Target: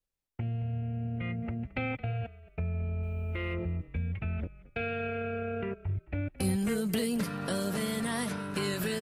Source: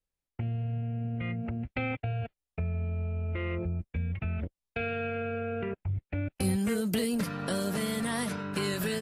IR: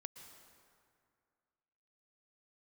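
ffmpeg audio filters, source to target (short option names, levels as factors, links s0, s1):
-filter_complex "[0:a]asettb=1/sr,asplit=3[s0][s1][s2];[s0]atrim=end=3.034[s3];[s1]atrim=start=3.03:end=3.54,asetpts=PTS-STARTPTS,afade=t=in:d=0.004:c=qsin,afade=t=out:st=0.506:d=0.004:c=qsin,aemphasis=mode=production:type=75fm[s4];[s2]atrim=start=3.536[s5];[s3][s4]acrossfade=d=0.004:c1=hsin:c2=qsin[s6];[s6][s5]acrossfade=d=0.004:c1=qsin:c2=hsin,asplit=4[s7][s8][s9][s10];[s8]adelay=220,afreqshift=-34,volume=0.119[s11];[s9]adelay=440,afreqshift=-68,volume=0.0367[s12];[s10]adelay=660,afreqshift=-102,volume=0.0115[s13];[s7][s11][s12][s13]amix=inputs=4:normalize=0,volume=0.891"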